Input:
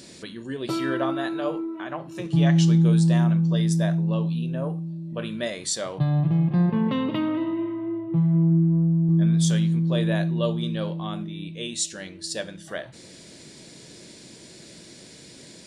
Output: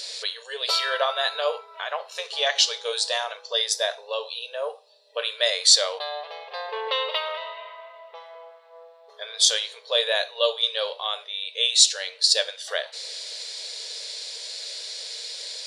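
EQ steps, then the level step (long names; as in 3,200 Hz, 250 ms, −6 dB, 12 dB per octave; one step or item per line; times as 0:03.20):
linear-phase brick-wall high-pass 420 Hz
parametric band 4,200 Hz +14 dB 1.1 octaves
+3.5 dB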